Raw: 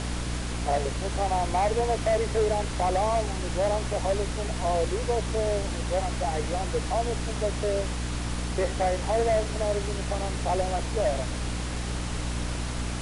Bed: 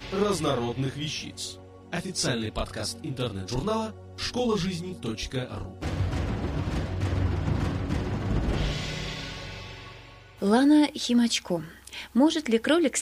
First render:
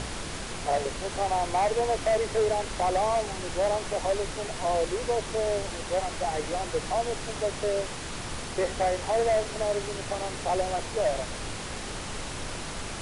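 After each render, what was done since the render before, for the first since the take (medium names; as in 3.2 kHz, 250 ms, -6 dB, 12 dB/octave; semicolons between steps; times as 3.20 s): hum notches 60/120/180/240/300 Hz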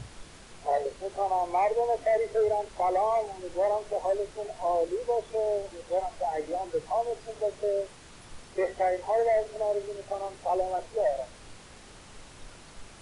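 noise print and reduce 14 dB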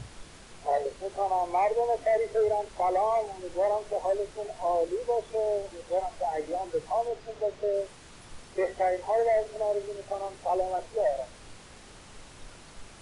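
7.08–7.74 s: distance through air 60 m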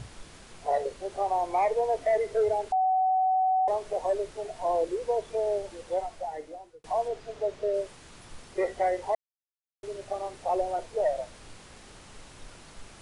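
2.72–3.68 s: bleep 752 Hz -21 dBFS; 5.84–6.84 s: fade out; 9.15–9.83 s: mute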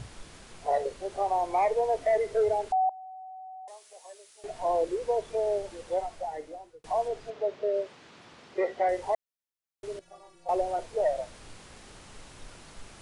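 2.89–4.44 s: differentiator; 7.30–8.89 s: band-pass 170–4500 Hz; 9.99–10.49 s: inharmonic resonator 170 Hz, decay 0.26 s, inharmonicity 0.008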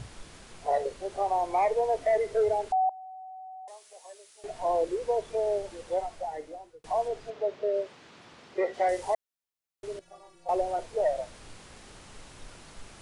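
8.73–9.13 s: treble shelf 4 kHz -> 5.8 kHz +10.5 dB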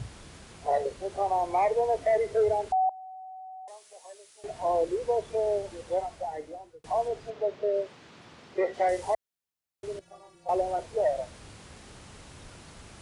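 high-pass 56 Hz; bass shelf 170 Hz +7.5 dB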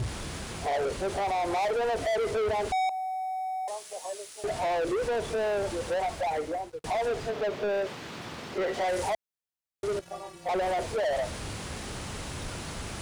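peak limiter -24.5 dBFS, peak gain reduction 7.5 dB; waveshaping leveller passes 3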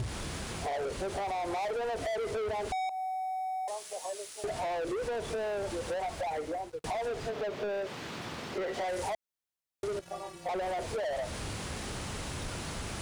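compression 4:1, threshold -33 dBFS, peak gain reduction 6 dB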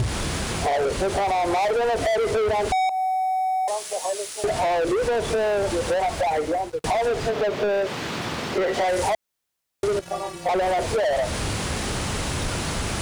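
trim +11.5 dB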